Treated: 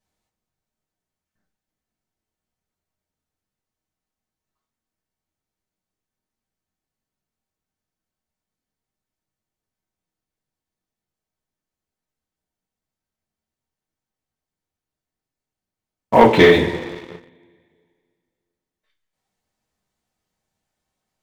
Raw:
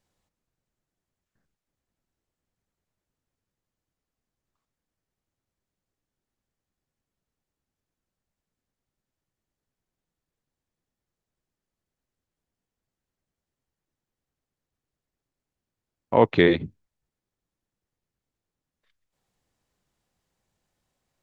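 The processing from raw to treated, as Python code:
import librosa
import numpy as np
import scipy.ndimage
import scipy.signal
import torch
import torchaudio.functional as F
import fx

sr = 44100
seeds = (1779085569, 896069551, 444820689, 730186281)

y = fx.rev_double_slope(x, sr, seeds[0], early_s=0.22, late_s=2.1, knee_db=-20, drr_db=-5.5)
y = fx.leveller(y, sr, passes=2)
y = F.gain(torch.from_numpy(y), -3.0).numpy()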